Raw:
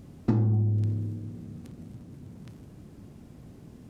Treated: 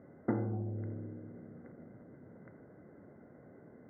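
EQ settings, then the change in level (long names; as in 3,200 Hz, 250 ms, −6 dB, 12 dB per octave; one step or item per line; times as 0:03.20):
high-pass filter 85 Hz
Chebyshev low-pass with heavy ripple 2,100 Hz, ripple 9 dB
low-shelf EQ 230 Hz −11.5 dB
+5.0 dB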